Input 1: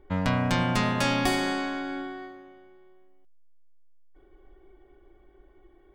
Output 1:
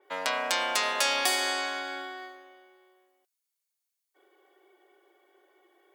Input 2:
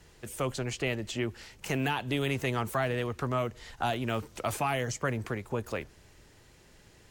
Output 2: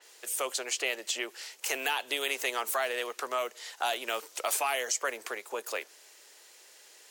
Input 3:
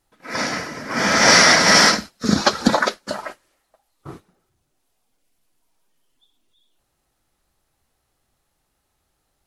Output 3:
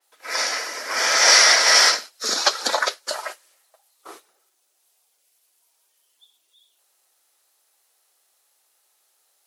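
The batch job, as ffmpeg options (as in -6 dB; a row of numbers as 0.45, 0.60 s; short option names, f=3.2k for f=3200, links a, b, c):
-filter_complex "[0:a]highpass=f=430:w=0.5412,highpass=f=430:w=1.3066,highshelf=f=3.1k:g=12,asplit=2[a][b];[b]acompressor=threshold=-25dB:ratio=6,volume=1dB[c];[a][c]amix=inputs=2:normalize=0,adynamicequalizer=threshold=0.1:dfrequency=4500:dqfactor=0.7:tfrequency=4500:tqfactor=0.7:attack=5:release=100:ratio=0.375:range=2.5:mode=cutabove:tftype=highshelf,volume=-7dB"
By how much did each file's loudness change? -1.0, +0.5, -2.0 LU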